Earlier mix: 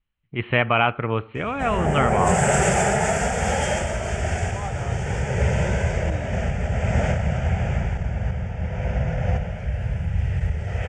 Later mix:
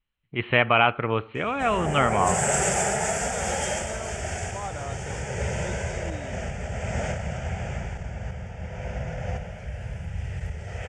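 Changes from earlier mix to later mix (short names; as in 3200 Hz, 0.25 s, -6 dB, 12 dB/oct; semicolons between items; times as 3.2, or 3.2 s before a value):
background -5.0 dB; master: add tone controls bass -4 dB, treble +7 dB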